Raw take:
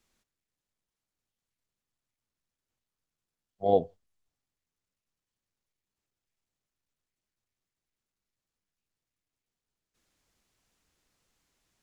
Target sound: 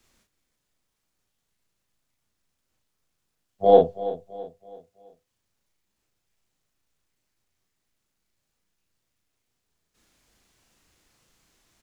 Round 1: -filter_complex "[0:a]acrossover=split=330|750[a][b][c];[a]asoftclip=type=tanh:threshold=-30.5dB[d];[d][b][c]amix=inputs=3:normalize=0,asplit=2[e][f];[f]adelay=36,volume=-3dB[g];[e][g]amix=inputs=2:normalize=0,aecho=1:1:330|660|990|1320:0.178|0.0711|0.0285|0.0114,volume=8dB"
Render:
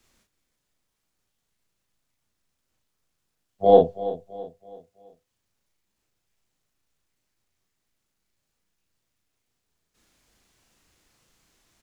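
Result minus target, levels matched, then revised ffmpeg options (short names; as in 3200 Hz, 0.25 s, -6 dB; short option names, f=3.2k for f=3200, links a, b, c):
soft clip: distortion -4 dB
-filter_complex "[0:a]acrossover=split=330|750[a][b][c];[a]asoftclip=type=tanh:threshold=-36.5dB[d];[d][b][c]amix=inputs=3:normalize=0,asplit=2[e][f];[f]adelay=36,volume=-3dB[g];[e][g]amix=inputs=2:normalize=0,aecho=1:1:330|660|990|1320:0.178|0.0711|0.0285|0.0114,volume=8dB"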